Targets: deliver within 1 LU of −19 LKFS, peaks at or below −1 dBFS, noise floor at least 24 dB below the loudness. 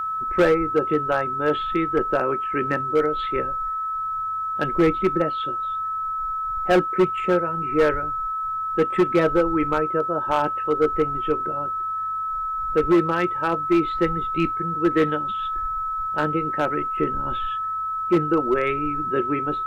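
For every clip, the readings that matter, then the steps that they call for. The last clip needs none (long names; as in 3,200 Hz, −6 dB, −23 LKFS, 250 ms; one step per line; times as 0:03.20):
share of clipped samples 1.0%; peaks flattened at −12.0 dBFS; interfering tone 1,300 Hz; level of the tone −24 dBFS; integrated loudness −22.5 LKFS; sample peak −12.0 dBFS; target loudness −19.0 LKFS
→ clipped peaks rebuilt −12 dBFS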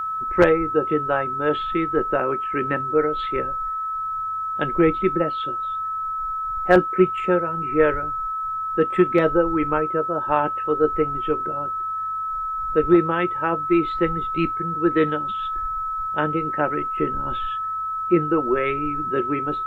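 share of clipped samples 0.0%; interfering tone 1,300 Hz; level of the tone −24 dBFS
→ notch filter 1,300 Hz, Q 30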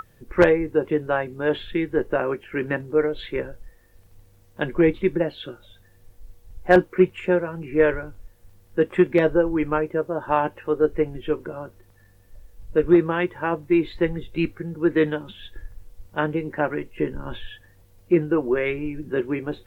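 interfering tone none found; integrated loudness −23.0 LKFS; sample peak −2.5 dBFS; target loudness −19.0 LKFS
→ level +4 dB
brickwall limiter −1 dBFS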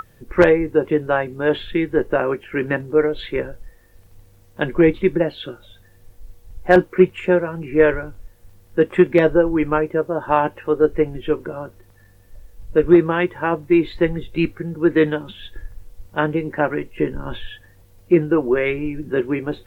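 integrated loudness −19.0 LKFS; sample peak −1.0 dBFS; background noise floor −51 dBFS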